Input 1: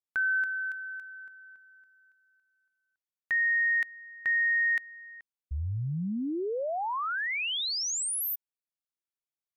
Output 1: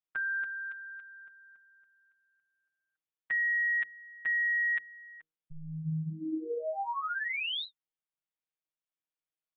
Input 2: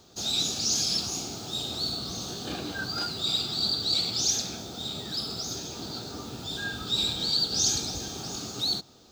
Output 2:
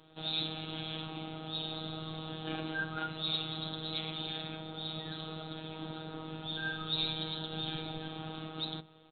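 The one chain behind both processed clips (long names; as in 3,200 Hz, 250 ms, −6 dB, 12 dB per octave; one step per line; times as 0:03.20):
mains-hum notches 60/120/180/240/300/360/420/480 Hz
phases set to zero 158 Hz
downsampling to 8,000 Hz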